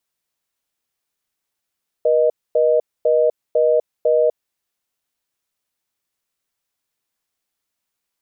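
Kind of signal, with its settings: call progress tone reorder tone, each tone -15 dBFS 2.42 s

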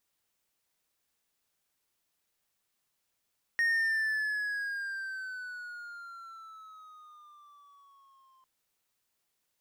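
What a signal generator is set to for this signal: gliding synth tone triangle, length 4.85 s, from 1860 Hz, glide -10 st, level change -37 dB, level -22 dB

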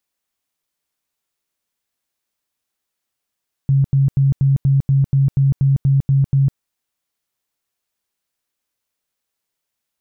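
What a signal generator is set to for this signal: tone bursts 137 Hz, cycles 21, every 0.24 s, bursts 12, -10.5 dBFS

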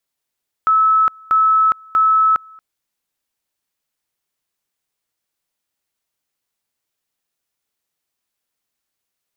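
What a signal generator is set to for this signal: two-level tone 1300 Hz -10 dBFS, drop 28.5 dB, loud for 0.41 s, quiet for 0.23 s, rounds 3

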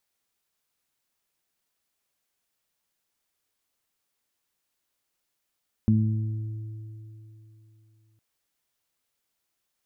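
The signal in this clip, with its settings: additive tone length 2.31 s, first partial 109 Hz, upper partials 1.5/-18 dB, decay 3.18 s, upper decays 1.01/3.56 s, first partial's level -19 dB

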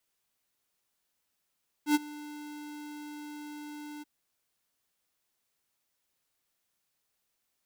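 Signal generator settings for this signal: ADSR square 297 Hz, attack 89 ms, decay 28 ms, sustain -21 dB, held 2.16 s, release 21 ms -22 dBFS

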